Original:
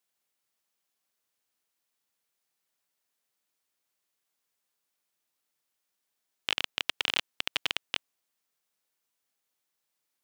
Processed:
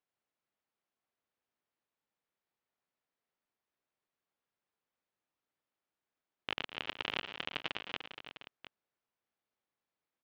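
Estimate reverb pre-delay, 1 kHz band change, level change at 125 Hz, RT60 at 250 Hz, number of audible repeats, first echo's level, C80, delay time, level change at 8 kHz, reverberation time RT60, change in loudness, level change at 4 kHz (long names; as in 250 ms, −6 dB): no reverb audible, −2.5 dB, +0.5 dB, no reverb audible, 5, −15.5 dB, no reverb audible, 112 ms, −20.0 dB, no reverb audible, −8.5 dB, −9.5 dB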